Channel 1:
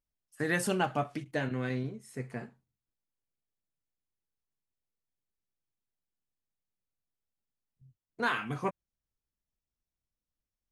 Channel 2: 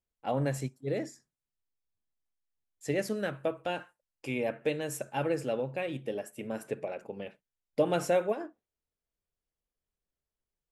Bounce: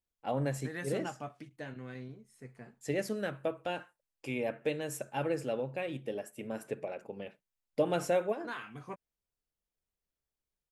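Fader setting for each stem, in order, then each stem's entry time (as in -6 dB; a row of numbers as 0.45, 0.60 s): -11.0, -2.5 dB; 0.25, 0.00 s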